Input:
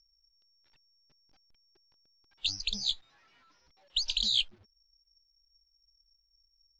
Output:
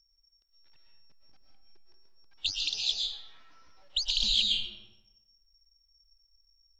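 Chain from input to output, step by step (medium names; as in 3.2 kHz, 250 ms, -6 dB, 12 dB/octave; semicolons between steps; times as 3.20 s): 2.50–2.92 s: high-pass 1 kHz -> 260 Hz 24 dB/octave; algorithmic reverb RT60 1 s, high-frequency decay 0.6×, pre-delay 85 ms, DRR -0.5 dB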